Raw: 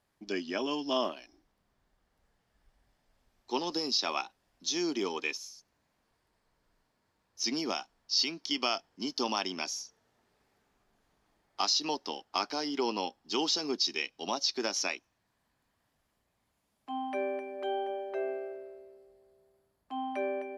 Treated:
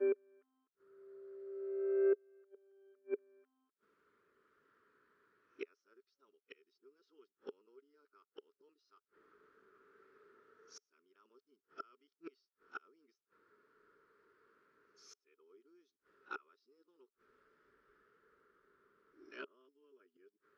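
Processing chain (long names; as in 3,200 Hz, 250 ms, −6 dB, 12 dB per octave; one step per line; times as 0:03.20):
played backwards from end to start
gate with flip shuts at −33 dBFS, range −42 dB
pair of resonant band-passes 750 Hz, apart 1.7 octaves
level +16 dB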